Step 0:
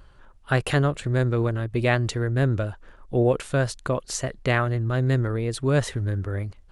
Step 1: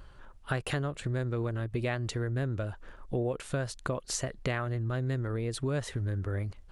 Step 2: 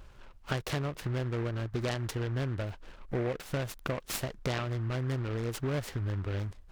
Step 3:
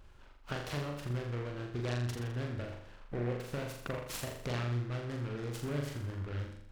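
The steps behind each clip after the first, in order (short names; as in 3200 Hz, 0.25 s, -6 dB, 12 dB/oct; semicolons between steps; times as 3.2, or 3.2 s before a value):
compressor 4:1, threshold -30 dBFS, peak gain reduction 12 dB
noise-modulated delay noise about 1200 Hz, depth 0.088 ms; gain -1 dB
flutter echo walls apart 7.1 m, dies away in 0.7 s; Doppler distortion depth 0.14 ms; gain -6.5 dB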